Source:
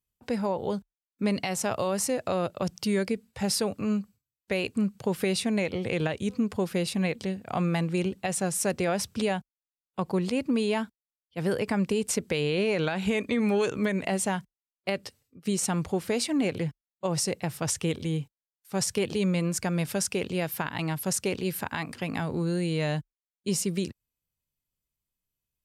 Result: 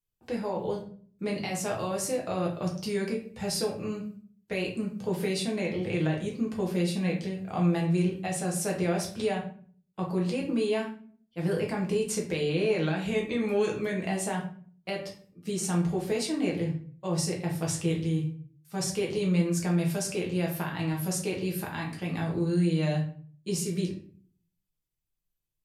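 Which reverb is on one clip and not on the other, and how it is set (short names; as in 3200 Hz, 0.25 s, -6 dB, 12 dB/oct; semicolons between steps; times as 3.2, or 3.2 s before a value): shoebox room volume 43 m³, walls mixed, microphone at 0.83 m; gain -7 dB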